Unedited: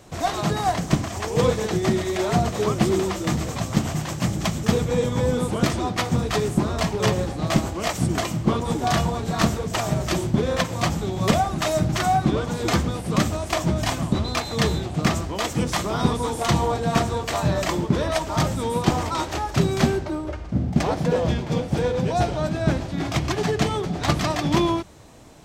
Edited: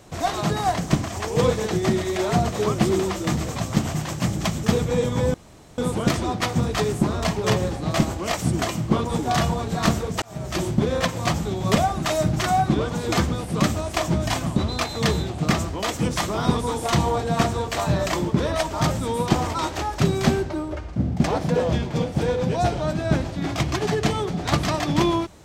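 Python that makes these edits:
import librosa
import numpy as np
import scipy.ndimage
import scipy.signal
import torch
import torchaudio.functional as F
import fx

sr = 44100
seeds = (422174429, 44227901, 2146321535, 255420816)

y = fx.edit(x, sr, fx.insert_room_tone(at_s=5.34, length_s=0.44),
    fx.fade_in_span(start_s=9.78, length_s=0.44), tone=tone)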